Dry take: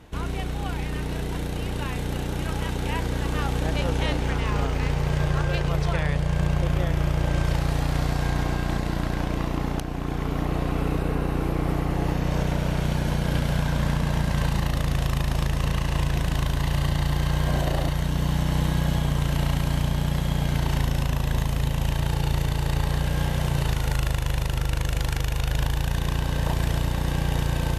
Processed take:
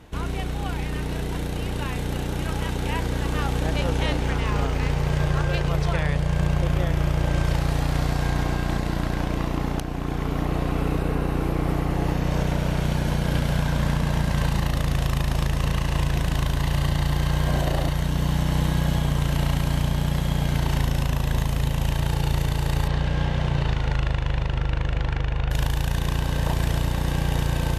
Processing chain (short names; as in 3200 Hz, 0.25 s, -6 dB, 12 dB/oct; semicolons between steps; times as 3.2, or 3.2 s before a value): 22.87–25.5 LPF 4900 Hz -> 2400 Hz 12 dB/oct; gain +1 dB